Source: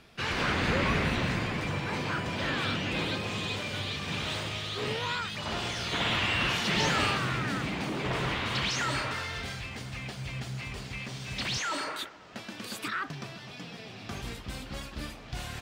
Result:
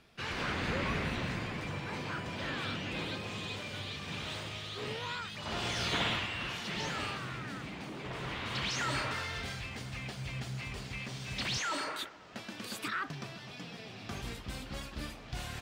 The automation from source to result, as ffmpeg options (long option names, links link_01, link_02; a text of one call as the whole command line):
ffmpeg -i in.wav -af "volume=8dB,afade=type=in:start_time=5.39:duration=0.46:silence=0.446684,afade=type=out:start_time=5.85:duration=0.44:silence=0.298538,afade=type=in:start_time=8.15:duration=0.86:silence=0.421697" out.wav